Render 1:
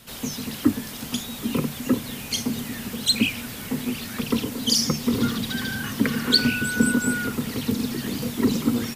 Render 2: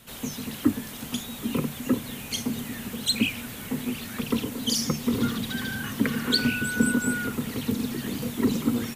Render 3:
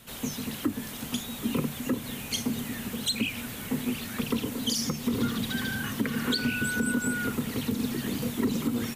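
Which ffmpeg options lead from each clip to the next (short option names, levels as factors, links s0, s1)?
-af "equalizer=f=5000:t=o:w=0.46:g=-5.5,volume=0.75"
-af "alimiter=limit=0.141:level=0:latency=1:release=168"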